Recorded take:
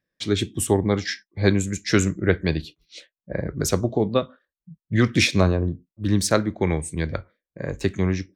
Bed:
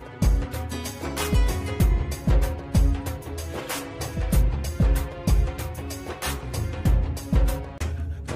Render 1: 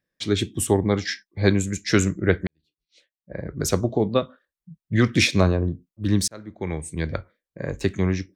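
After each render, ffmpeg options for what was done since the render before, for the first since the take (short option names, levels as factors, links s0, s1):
-filter_complex "[0:a]asplit=3[s0][s1][s2];[s0]atrim=end=2.47,asetpts=PTS-STARTPTS,afade=t=out:st=2.466:d=0.004:c=hsin[s3];[s1]atrim=start=2.47:end=6.28,asetpts=PTS-STARTPTS,afade=t=in:d=1.25:c=qua,afade=t=out:st=3.806:d=0.004:c=hsin[s4];[s2]atrim=start=6.28,asetpts=PTS-STARTPTS,afade=t=in:d=0.83[s5];[s3][s4][s5]concat=n=3:v=0:a=1"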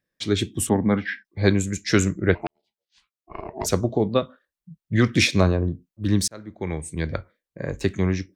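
-filter_complex "[0:a]asettb=1/sr,asplit=3[s0][s1][s2];[s0]atrim=end=0.694[s3];[s1]atrim=start=0.69:end=1.25,asetpts=PTS-STARTPTS,afade=t=in:d=0.004:c=qsin,afade=t=out:st=0.556:d=0.004:c=qsin,highpass=110,equalizer=f=230:t=q:w=4:g=9,equalizer=f=370:t=q:w=4:g=-7,equalizer=f=1500:t=q:w=4:g=5,lowpass=f=2800:w=0.5412,lowpass=f=2800:w=1.3066[s4];[s2]atrim=start=1.246[s5];[s3][s4]acrossfade=d=0.004:c1=hsin:c2=qsin[s6];[s6][s5]acrossfade=d=0.004:c1=qsin:c2=hsin,asplit=3[s7][s8][s9];[s7]afade=t=out:st=2.34:d=0.02[s10];[s8]aeval=exprs='val(0)*sin(2*PI*520*n/s)':c=same,afade=t=in:st=2.34:d=0.02,afade=t=out:st=3.65:d=0.02[s11];[s9]afade=t=in:st=3.65:d=0.02[s12];[s10][s11][s12]amix=inputs=3:normalize=0"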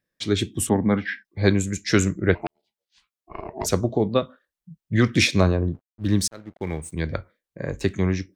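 -filter_complex "[0:a]asplit=3[s0][s1][s2];[s0]afade=t=out:st=5.73:d=0.02[s3];[s1]aeval=exprs='sgn(val(0))*max(abs(val(0))-0.00376,0)':c=same,afade=t=in:st=5.73:d=0.02,afade=t=out:st=6.92:d=0.02[s4];[s2]afade=t=in:st=6.92:d=0.02[s5];[s3][s4][s5]amix=inputs=3:normalize=0"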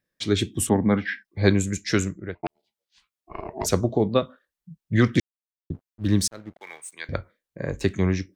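-filter_complex "[0:a]asettb=1/sr,asplit=3[s0][s1][s2];[s0]atrim=end=6.604[s3];[s1]atrim=start=6.6:end=7.09,asetpts=PTS-STARTPTS,afade=t=in:d=0.004:c=qsin,afade=t=out:st=0.486:d=0.004:c=qsin,highpass=1200[s4];[s2]atrim=start=7.086[s5];[s3][s4]acrossfade=d=0.004:c1=hsin:c2=qsin[s6];[s6][s5]acrossfade=d=0.004:c1=qsin:c2=hsin,asplit=4[s7][s8][s9][s10];[s7]atrim=end=2.43,asetpts=PTS-STARTPTS,afade=t=out:st=1.74:d=0.69[s11];[s8]atrim=start=2.43:end=5.2,asetpts=PTS-STARTPTS,afade=t=in:d=0.004:c=hsin,afade=t=out:st=2.766:d=0.004:c=hsin[s12];[s9]atrim=start=5.2:end=5.7,asetpts=PTS-STARTPTS,volume=0[s13];[s10]atrim=start=5.7,asetpts=PTS-STARTPTS,afade=t=in:d=0.004:c=hsin[s14];[s11][s12][s13][s14]concat=n=4:v=0:a=1"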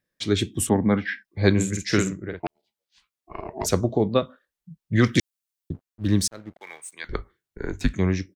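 -filter_complex "[0:a]asplit=3[s0][s1][s2];[s0]afade=t=out:st=1.56:d=0.02[s3];[s1]asplit=2[s4][s5];[s5]adelay=48,volume=0.596[s6];[s4][s6]amix=inputs=2:normalize=0,afade=t=in:st=1.56:d=0.02,afade=t=out:st=2.43:d=0.02[s7];[s2]afade=t=in:st=2.43:d=0.02[s8];[s3][s7][s8]amix=inputs=3:normalize=0,asettb=1/sr,asplit=3[s9][s10][s11];[s9]atrim=end=5.034[s12];[s10]atrim=start=5.03:end=5.73,asetpts=PTS-STARTPTS,afade=t=in:d=0.004:c=qsin,afade=t=out:st=0.696:d=0.004:c=qsin,highshelf=f=3100:g=10.5[s13];[s11]atrim=start=5.726[s14];[s12][s13]acrossfade=d=0.004:c1=hsin:c2=qsin[s15];[s15][s14]acrossfade=d=0.004:c1=qsin:c2=hsin,asettb=1/sr,asplit=3[s16][s17][s18];[s16]atrim=end=7.044[s19];[s17]atrim=start=7.04:end=7.94,asetpts=PTS-STARTPTS,afade=t=in:d=0.004:c=qsin,afade=t=out:st=0.896:d=0.004:c=qsin,afreqshift=-140[s20];[s18]atrim=start=7.936[s21];[s19][s20]acrossfade=d=0.004:c1=hsin:c2=qsin[s22];[s22][s21]acrossfade=d=0.004:c1=qsin:c2=hsin"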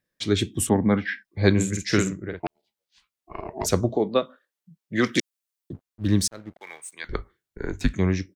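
-filter_complex "[0:a]asettb=1/sr,asplit=3[s0][s1][s2];[s0]atrim=end=3.964[s3];[s1]atrim=start=3.96:end=5.73,asetpts=PTS-STARTPTS,afade=t=in:d=0.004:c=qsin,afade=t=out:st=1.766:d=0.004:c=qsin,highpass=250[s4];[s2]atrim=start=5.726[s5];[s3][s4]acrossfade=d=0.004:c1=hsin:c2=qsin[s6];[s6][s5]acrossfade=d=0.004:c1=qsin:c2=hsin"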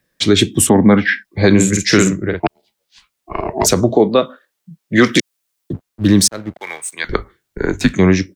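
-filter_complex "[0:a]acrossover=split=130|6400[s0][s1][s2];[s0]acompressor=threshold=0.0126:ratio=6[s3];[s3][s1][s2]amix=inputs=3:normalize=0,alimiter=level_in=4.73:limit=0.891:release=50:level=0:latency=1"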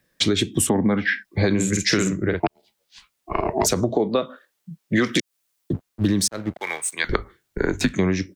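-af "acompressor=threshold=0.141:ratio=6"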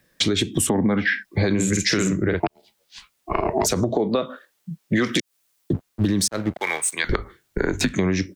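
-filter_complex "[0:a]acompressor=threshold=0.1:ratio=6,asplit=2[s0][s1];[s1]alimiter=limit=0.112:level=0:latency=1:release=30,volume=0.75[s2];[s0][s2]amix=inputs=2:normalize=0"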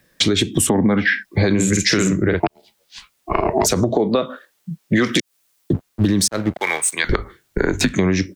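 -af "volume=1.58,alimiter=limit=0.794:level=0:latency=1"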